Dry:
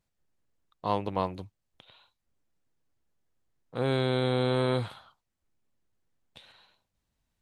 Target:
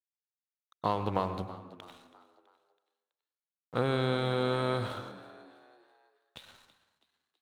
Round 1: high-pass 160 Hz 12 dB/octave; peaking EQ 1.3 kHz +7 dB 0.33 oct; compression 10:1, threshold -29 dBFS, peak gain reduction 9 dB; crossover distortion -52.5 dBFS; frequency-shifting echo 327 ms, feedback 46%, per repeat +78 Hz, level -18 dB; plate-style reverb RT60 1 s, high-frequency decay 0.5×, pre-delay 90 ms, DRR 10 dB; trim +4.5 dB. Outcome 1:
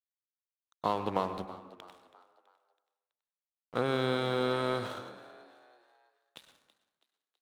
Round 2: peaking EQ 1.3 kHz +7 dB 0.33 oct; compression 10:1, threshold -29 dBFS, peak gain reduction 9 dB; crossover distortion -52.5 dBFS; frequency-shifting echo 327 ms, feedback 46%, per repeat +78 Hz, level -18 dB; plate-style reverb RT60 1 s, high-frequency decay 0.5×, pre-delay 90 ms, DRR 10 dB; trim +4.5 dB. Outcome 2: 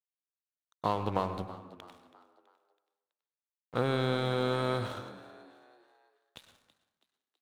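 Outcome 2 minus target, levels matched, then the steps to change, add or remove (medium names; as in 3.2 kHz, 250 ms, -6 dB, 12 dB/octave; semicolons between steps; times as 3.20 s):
crossover distortion: distortion +6 dB
change: crossover distortion -59.5 dBFS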